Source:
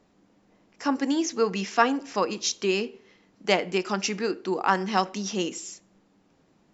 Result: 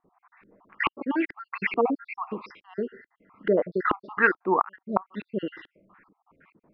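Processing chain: random spectral dropouts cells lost 58%; band shelf 1600 Hz +13.5 dB; LFO low-pass saw up 2.3 Hz 320–2700 Hz; flipped gate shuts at -6 dBFS, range -33 dB; downsampling 11025 Hz

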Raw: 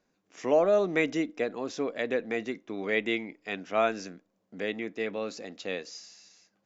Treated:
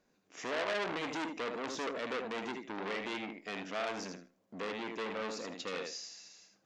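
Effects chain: limiter -23 dBFS, peak gain reduction 10.5 dB; thinning echo 78 ms, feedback 17%, high-pass 210 Hz, level -5 dB; core saturation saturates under 2700 Hz

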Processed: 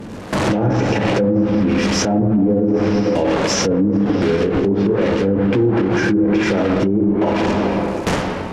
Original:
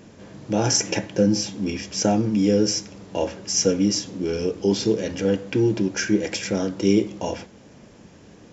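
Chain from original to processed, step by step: delta modulation 64 kbps, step -24 dBFS; harmonic tremolo 1.3 Hz, depth 50%, crossover 430 Hz; gate with hold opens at -21 dBFS; high shelf 3100 Hz -11.5 dB; reverb RT60 2.2 s, pre-delay 23 ms, DRR 4 dB; treble ducked by the level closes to 750 Hz, closed at -16 dBFS; compressor 3:1, threshold -32 dBFS, peak gain reduction 13.5 dB; maximiser +29 dB; gain -7.5 dB

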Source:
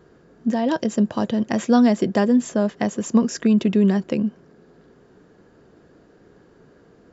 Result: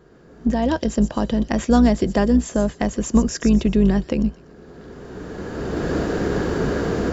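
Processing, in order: octaver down 2 oct, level -6 dB; recorder AGC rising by 17 dB/s; thin delay 0.123 s, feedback 31%, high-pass 4600 Hz, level -6 dB

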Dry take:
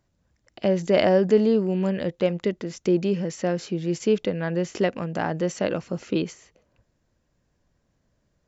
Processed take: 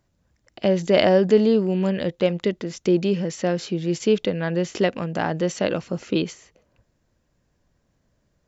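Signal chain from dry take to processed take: dynamic EQ 3600 Hz, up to +5 dB, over -49 dBFS, Q 1.7; gain +2 dB

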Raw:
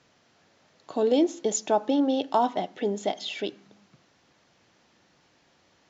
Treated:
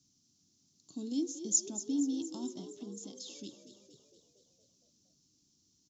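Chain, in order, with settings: EQ curve 290 Hz 0 dB, 530 Hz -27 dB, 1200 Hz -22 dB, 1800 Hz -29 dB, 5700 Hz +9 dB; 2.75–3.42 compressor, threshold -35 dBFS, peak gain reduction 6.5 dB; frequency-shifting echo 0.233 s, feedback 61%, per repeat +47 Hz, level -12.5 dB; gain -7.5 dB

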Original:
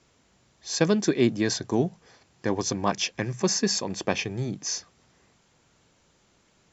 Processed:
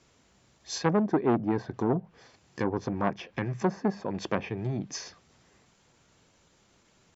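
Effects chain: treble ducked by the level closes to 1100 Hz, closed at -22.5 dBFS; tempo 0.94×; core saturation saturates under 790 Hz

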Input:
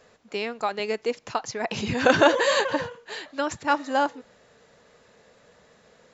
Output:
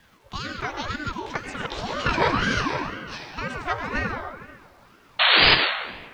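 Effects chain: gliding pitch shift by +6.5 st ending unshifted; LPF 5700 Hz 24 dB/oct; in parallel at +1.5 dB: compressor, threshold -33 dBFS, peak gain reduction 18 dB; on the sum: painted sound noise, 5.19–5.55, 800–4100 Hz -11 dBFS; vibrato 3 Hz 14 cents; bit-crush 10-bit; on a send at -3 dB: reverb RT60 1.5 s, pre-delay 60 ms; on the sum: ring modulator with a swept carrier 570 Hz, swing 60%, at 2 Hz; gain -3 dB

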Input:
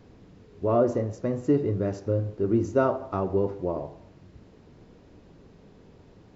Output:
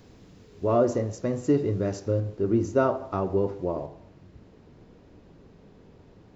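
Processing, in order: high shelf 3700 Hz +11 dB, from 2.2 s +4.5 dB, from 3.86 s -3 dB

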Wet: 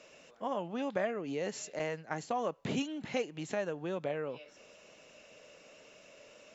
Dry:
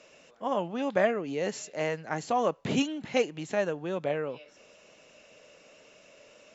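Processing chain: 1.79–2.42 expander -34 dBFS; compressor 2:1, threshold -34 dBFS, peak gain reduction 8.5 dB; gain -1 dB

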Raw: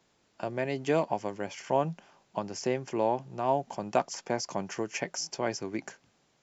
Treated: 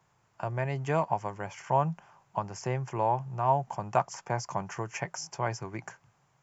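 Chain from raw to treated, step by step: graphic EQ 125/250/500/1000/4000 Hz +12/-11/-4/+7/-10 dB

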